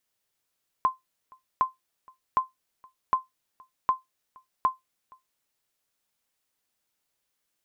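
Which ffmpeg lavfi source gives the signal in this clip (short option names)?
-f lavfi -i "aevalsrc='0.211*(sin(2*PI*1040*mod(t,0.76))*exp(-6.91*mod(t,0.76)/0.16)+0.0376*sin(2*PI*1040*max(mod(t,0.76)-0.47,0))*exp(-6.91*max(mod(t,0.76)-0.47,0)/0.16))':d=4.56:s=44100"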